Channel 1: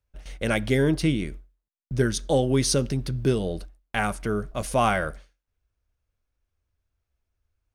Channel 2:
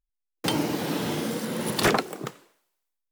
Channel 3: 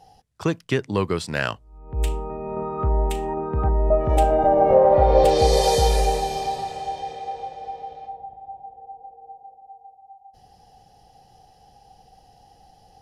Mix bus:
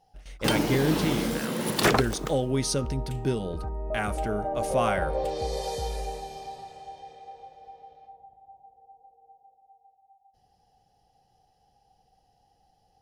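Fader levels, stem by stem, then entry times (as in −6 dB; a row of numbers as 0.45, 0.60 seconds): −4.5, 0.0, −13.5 decibels; 0.00, 0.00, 0.00 seconds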